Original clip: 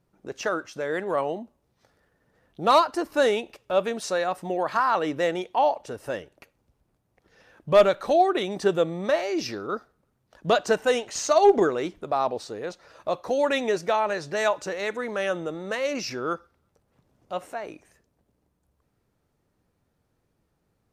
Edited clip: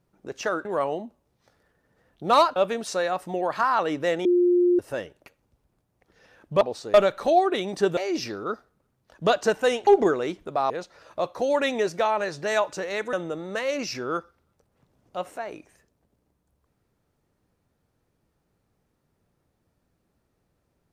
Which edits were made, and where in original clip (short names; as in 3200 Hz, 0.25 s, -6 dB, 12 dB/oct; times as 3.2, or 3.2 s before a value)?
0.65–1.02 cut
2.93–3.72 cut
5.41–5.95 bleep 354 Hz -16 dBFS
8.8–9.2 cut
11.1–11.43 cut
12.26–12.59 move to 7.77
15.02–15.29 cut